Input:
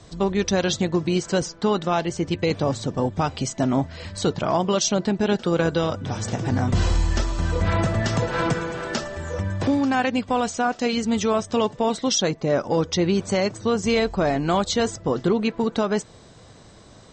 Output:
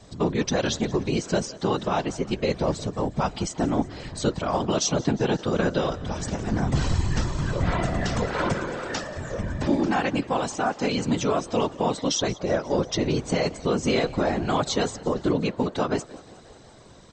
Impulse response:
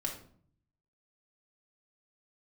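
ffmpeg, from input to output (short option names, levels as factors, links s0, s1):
-filter_complex "[0:a]asplit=7[s0][s1][s2][s3][s4][s5][s6];[s1]adelay=178,afreqshift=47,volume=0.0944[s7];[s2]adelay=356,afreqshift=94,volume=0.0603[s8];[s3]adelay=534,afreqshift=141,volume=0.0385[s9];[s4]adelay=712,afreqshift=188,volume=0.0248[s10];[s5]adelay=890,afreqshift=235,volume=0.0158[s11];[s6]adelay=1068,afreqshift=282,volume=0.0101[s12];[s0][s7][s8][s9][s10][s11][s12]amix=inputs=7:normalize=0,afftfilt=real='hypot(re,im)*cos(2*PI*random(0))':imag='hypot(re,im)*sin(2*PI*random(1))':win_size=512:overlap=0.75,volume=1.5"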